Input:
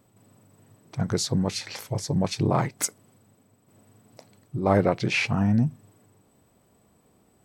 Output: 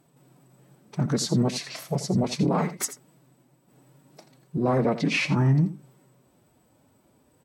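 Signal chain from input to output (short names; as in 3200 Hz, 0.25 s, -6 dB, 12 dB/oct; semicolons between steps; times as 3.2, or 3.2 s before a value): dynamic EQ 250 Hz, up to +5 dB, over -36 dBFS, Q 0.79; formant-preserving pitch shift +4.5 st; limiter -14.5 dBFS, peak gain reduction 7 dB; on a send: echo 84 ms -13.5 dB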